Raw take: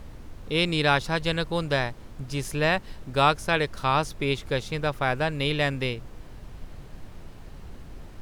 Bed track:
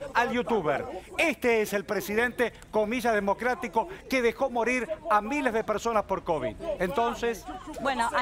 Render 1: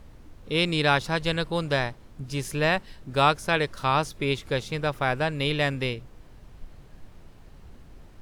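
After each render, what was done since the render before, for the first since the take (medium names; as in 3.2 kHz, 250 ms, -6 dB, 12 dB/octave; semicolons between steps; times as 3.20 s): noise print and reduce 6 dB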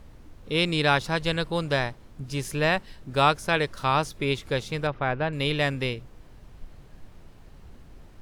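4.87–5.33 s: distance through air 290 m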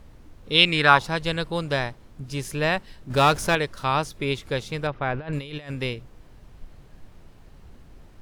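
0.52–1.05 s: peaking EQ 4.1 kHz -> 770 Hz +13 dB; 3.10–3.55 s: power-law waveshaper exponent 0.7; 5.14–5.71 s: compressor with a negative ratio -31 dBFS, ratio -0.5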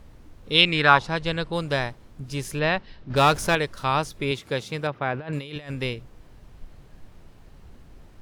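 0.61–1.53 s: distance through air 57 m; 2.59–3.16 s: low-pass 4.9 kHz 24 dB/octave; 4.31–5.56 s: high-pass 110 Hz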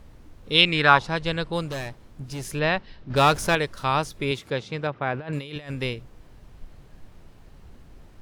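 1.68–2.43 s: overload inside the chain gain 28.5 dB; 4.50–5.07 s: distance through air 97 m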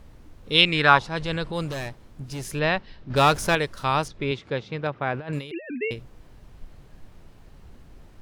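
1.03–1.89 s: transient shaper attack -6 dB, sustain +4 dB; 4.08–4.86 s: distance through air 130 m; 5.51–5.91 s: formants replaced by sine waves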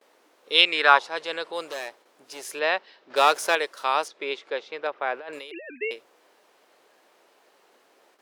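gate with hold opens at -40 dBFS; high-pass 410 Hz 24 dB/octave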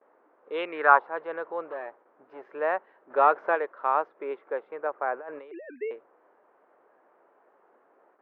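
low-pass 1.5 kHz 24 dB/octave; bass shelf 170 Hz -7.5 dB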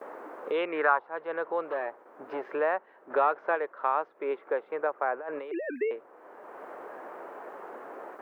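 three bands compressed up and down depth 70%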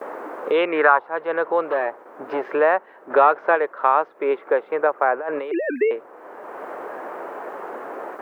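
trim +10 dB; peak limiter -2 dBFS, peak gain reduction 2 dB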